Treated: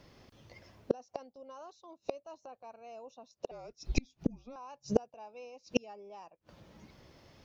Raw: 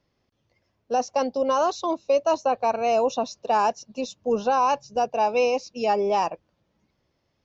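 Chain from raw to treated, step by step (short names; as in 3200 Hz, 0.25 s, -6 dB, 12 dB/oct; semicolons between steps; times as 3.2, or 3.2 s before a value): flipped gate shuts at -27 dBFS, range -41 dB; 3.51–4.56 frequency shift -260 Hz; gain +14 dB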